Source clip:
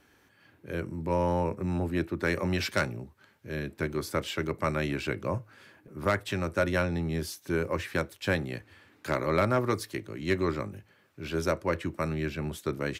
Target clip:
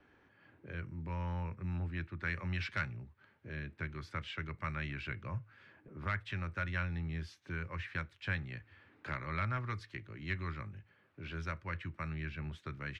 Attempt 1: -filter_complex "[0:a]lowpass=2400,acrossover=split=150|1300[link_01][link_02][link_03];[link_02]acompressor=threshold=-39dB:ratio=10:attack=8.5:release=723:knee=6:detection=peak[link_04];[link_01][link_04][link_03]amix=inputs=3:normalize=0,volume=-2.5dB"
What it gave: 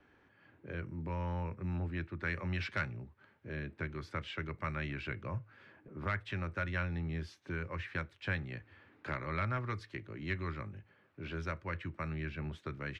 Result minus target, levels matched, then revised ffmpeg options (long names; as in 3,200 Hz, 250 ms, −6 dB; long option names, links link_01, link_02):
downward compressor: peak gain reduction −7 dB
-filter_complex "[0:a]lowpass=2400,acrossover=split=150|1300[link_01][link_02][link_03];[link_02]acompressor=threshold=-46.5dB:ratio=10:attack=8.5:release=723:knee=6:detection=peak[link_04];[link_01][link_04][link_03]amix=inputs=3:normalize=0,volume=-2.5dB"